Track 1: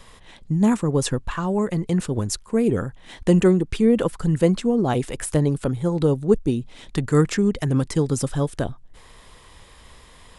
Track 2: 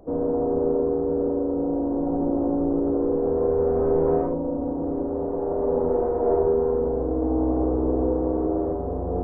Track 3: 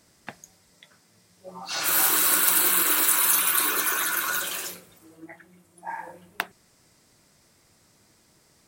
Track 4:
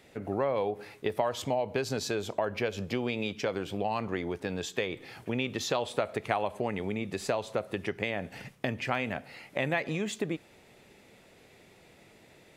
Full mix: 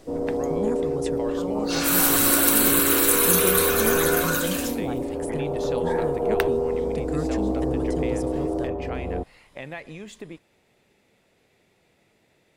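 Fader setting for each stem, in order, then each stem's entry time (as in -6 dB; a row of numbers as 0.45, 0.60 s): -12.5, -2.5, +1.0, -7.0 dB; 0.00, 0.00, 0.00, 0.00 s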